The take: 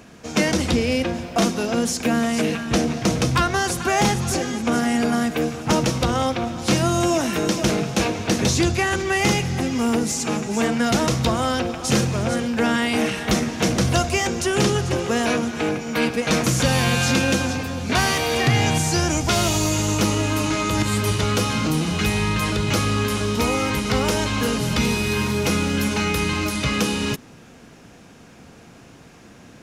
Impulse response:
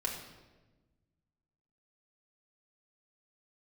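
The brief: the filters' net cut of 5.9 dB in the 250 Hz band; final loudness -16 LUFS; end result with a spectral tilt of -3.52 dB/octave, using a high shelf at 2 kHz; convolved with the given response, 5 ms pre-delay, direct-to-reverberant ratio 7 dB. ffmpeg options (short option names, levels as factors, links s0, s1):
-filter_complex "[0:a]equalizer=f=250:t=o:g=-8,highshelf=f=2000:g=8,asplit=2[s0][s1];[1:a]atrim=start_sample=2205,adelay=5[s2];[s1][s2]afir=irnorm=-1:irlink=0,volume=0.316[s3];[s0][s3]amix=inputs=2:normalize=0,volume=1.33"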